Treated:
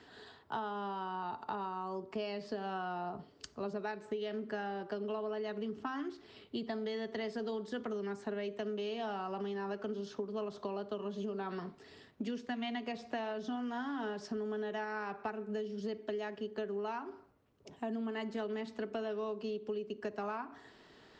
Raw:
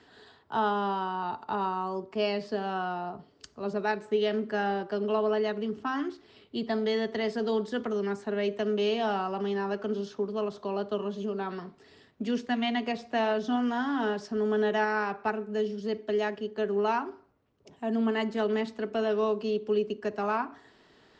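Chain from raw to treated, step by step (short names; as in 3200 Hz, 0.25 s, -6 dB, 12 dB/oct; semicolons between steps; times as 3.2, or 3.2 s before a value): compressor 12:1, threshold -35 dBFS, peak gain reduction 13.5 dB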